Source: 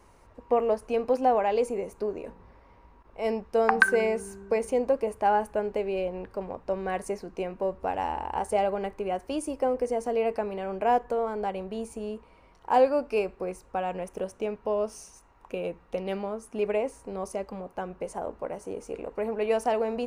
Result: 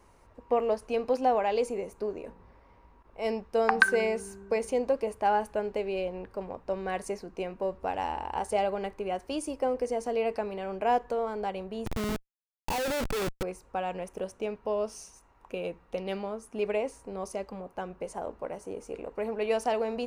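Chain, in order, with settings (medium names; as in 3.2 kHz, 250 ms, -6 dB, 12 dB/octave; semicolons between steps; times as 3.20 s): dynamic bell 4.3 kHz, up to +6 dB, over -50 dBFS, Q 0.84; 11.86–13.43 s: Schmitt trigger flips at -37 dBFS; trim -2.5 dB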